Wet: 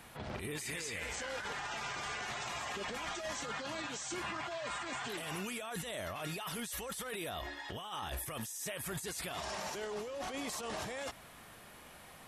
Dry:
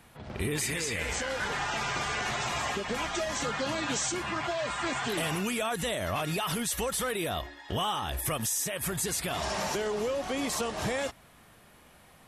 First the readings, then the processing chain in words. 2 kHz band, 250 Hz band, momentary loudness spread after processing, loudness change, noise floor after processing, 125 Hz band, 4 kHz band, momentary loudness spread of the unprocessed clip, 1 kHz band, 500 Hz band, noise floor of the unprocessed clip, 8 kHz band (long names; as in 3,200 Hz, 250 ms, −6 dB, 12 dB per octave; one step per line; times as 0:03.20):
−7.5 dB, −10.0 dB, 4 LU, −9.0 dB, −55 dBFS, −10.5 dB, −8.5 dB, 2 LU, −8.5 dB, −9.5 dB, −57 dBFS, −10.0 dB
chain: low-shelf EQ 340 Hz −5 dB
compressor whose output falls as the input rises −36 dBFS, ratio −0.5
brickwall limiter −30 dBFS, peak gain reduction 11 dB
level −1 dB